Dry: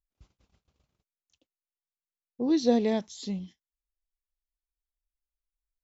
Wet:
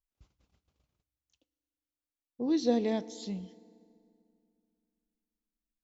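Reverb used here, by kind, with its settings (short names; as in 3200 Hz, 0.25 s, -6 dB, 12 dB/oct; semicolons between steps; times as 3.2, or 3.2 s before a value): FDN reverb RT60 2.4 s, low-frequency decay 1.25×, high-frequency decay 0.75×, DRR 18.5 dB; gain -4 dB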